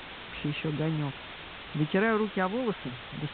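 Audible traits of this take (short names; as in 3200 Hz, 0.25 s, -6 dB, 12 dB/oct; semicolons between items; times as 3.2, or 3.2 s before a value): a quantiser's noise floor 6-bit, dither triangular; A-law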